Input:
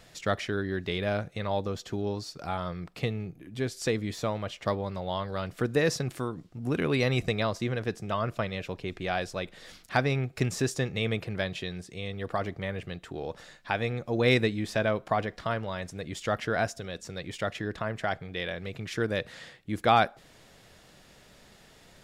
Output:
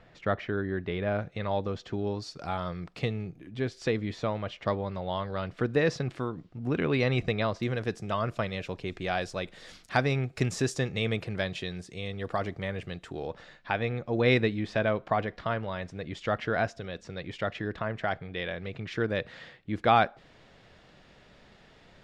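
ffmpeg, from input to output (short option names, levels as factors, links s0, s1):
-af "asetnsamples=n=441:p=0,asendcmd='1.19 lowpass f 3700;2.22 lowpass f 6700;3.51 lowpass f 3800;7.63 lowpass f 8900;13.27 lowpass f 3700',lowpass=2100"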